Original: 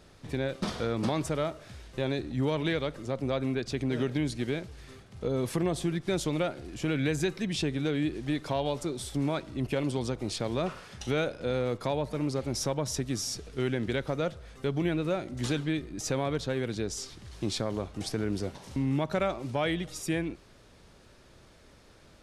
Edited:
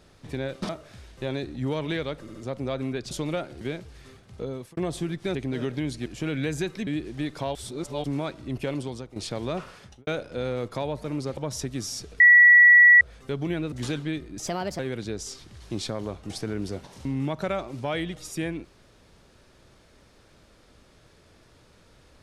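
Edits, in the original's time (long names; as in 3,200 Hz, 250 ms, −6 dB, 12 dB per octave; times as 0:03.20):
0:00.69–0:01.45: remove
0:02.97: stutter 0.07 s, 3 plays
0:03.73–0:04.44: swap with 0:06.18–0:06.68
0:05.18–0:05.60: fade out linear
0:07.49–0:07.96: remove
0:08.64–0:09.13: reverse
0:09.82–0:10.25: fade out, to −12.5 dB
0:10.86–0:11.16: fade out and dull
0:12.46–0:12.72: remove
0:13.55–0:14.36: beep over 1,940 Hz −10 dBFS
0:15.07–0:15.33: remove
0:16.08–0:16.50: play speed 131%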